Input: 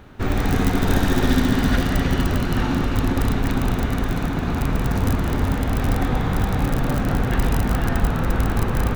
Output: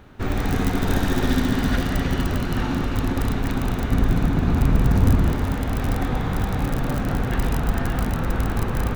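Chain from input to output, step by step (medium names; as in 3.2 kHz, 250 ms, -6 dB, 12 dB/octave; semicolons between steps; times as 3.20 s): 3.91–5.32 s: bass shelf 320 Hz +7.5 dB; 7.60–8.14 s: reverse; trim -2.5 dB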